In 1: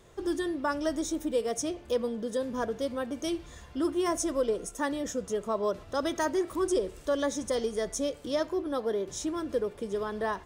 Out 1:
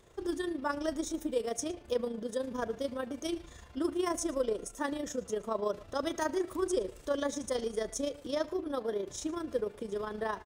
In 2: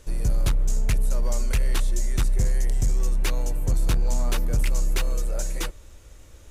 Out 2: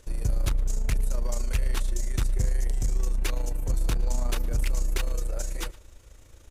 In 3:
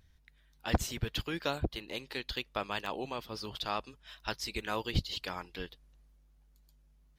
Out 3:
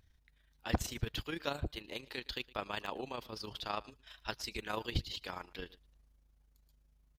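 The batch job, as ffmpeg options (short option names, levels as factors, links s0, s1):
-filter_complex "[0:a]equalizer=f=170:t=o:w=0.39:g=-3,tremolo=f=27:d=0.571,asplit=2[s0][s1];[s1]aecho=0:1:113:0.0794[s2];[s0][s2]amix=inputs=2:normalize=0,volume=0.891"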